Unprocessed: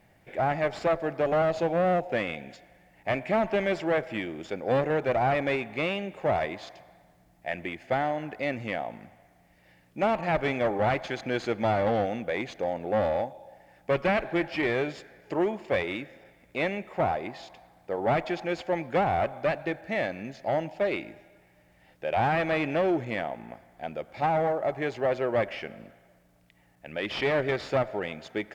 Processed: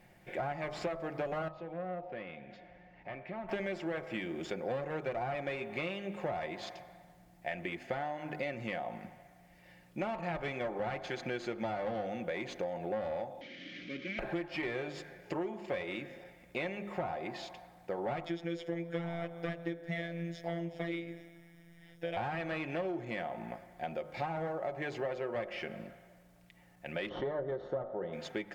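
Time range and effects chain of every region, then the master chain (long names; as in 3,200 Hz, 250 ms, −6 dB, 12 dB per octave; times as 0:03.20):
0:01.48–0:03.49: downward compressor 2 to 1, threshold −51 dBFS + Gaussian smoothing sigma 2.1 samples
0:13.41–0:14.19: linear delta modulator 32 kbit/s, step −26 dBFS + formant filter i
0:18.24–0:22.17: phases set to zero 169 Hz + comb filter 6.5 ms, depth 88%
0:27.09–0:28.13: moving average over 18 samples + parametric band 510 Hz +6.5 dB 0.58 octaves
whole clip: comb filter 5.6 ms, depth 40%; hum removal 50.51 Hz, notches 27; downward compressor 6 to 1, threshold −34 dBFS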